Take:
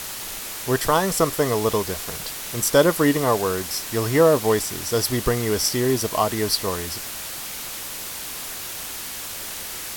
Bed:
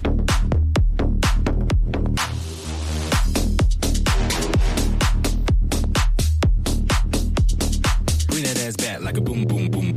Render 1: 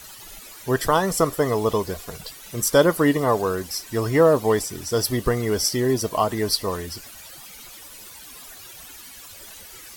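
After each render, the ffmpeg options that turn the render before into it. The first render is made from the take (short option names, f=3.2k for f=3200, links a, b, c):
-af "afftdn=nr=14:nf=-33"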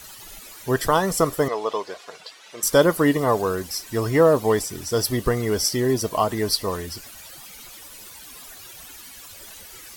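-filter_complex "[0:a]asettb=1/sr,asplit=3[a][b][c];[a]atrim=end=1.484[d];[b]atrim=start=1.48:end=2.63,asetpts=PTS-STARTPTS,afade=t=in:d=0.004:c=qsin,afade=t=out:st=1.146:d=0.004:c=qsin,highpass=510,lowpass=4.9k[e];[c]atrim=start=2.626[f];[d][e]acrossfade=d=0.004:c1=hsin:c2=qsin[g];[g][f]acrossfade=d=0.004:c1=qsin:c2=hsin"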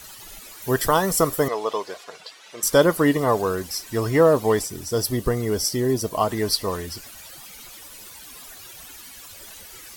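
-filter_complex "[0:a]asettb=1/sr,asplit=3[a][b][c];[a]atrim=end=0.624[d];[b]atrim=start=0.62:end=2.04,asetpts=PTS-STARTPTS,afade=t=in:d=0.004:c=qsin,afade=t=out:st=1.416:d=0.004:c=qsin,highshelf=f=11k:g=10.5[e];[c]atrim=start=2.036[f];[d][e]acrossfade=d=0.004:c1=hsin:c2=qsin[g];[g][f]acrossfade=d=0.004:c1=qsin:c2=hsin,asettb=1/sr,asplit=3[h][i][j];[h]atrim=end=4.674[k];[i]atrim=start=4.67:end=6.21,asetpts=PTS-STARTPTS,afade=t=in:d=0.004:c=qsin,afade=t=out:st=1.536:d=0.004:c=qsin,equalizer=f=2k:w=0.45:g=-4.5[l];[j]atrim=start=6.206[m];[k][l]acrossfade=d=0.004:c1=hsin:c2=qsin[n];[n][m]acrossfade=d=0.004:c1=qsin:c2=hsin"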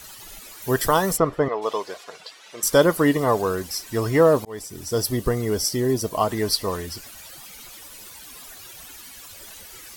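-filter_complex "[0:a]asplit=3[a][b][c];[a]afade=t=out:st=1.16:d=0.02[d];[b]lowpass=2.3k,afade=t=in:st=1.16:d=0.02,afade=t=out:st=1.61:d=0.02[e];[c]afade=t=in:st=1.61:d=0.02[f];[d][e][f]amix=inputs=3:normalize=0,asplit=2[g][h];[g]atrim=end=4.45,asetpts=PTS-STARTPTS,afade=t=out:st=4.446:d=0.004:c=hsin[i];[h]atrim=start=4.45,asetpts=PTS-STARTPTS,afade=t=in:d=0.44[j];[i][j]concat=n=2:v=0:a=1"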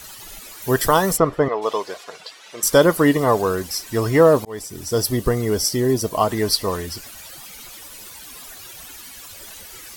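-af "volume=3dB,alimiter=limit=-2dB:level=0:latency=1"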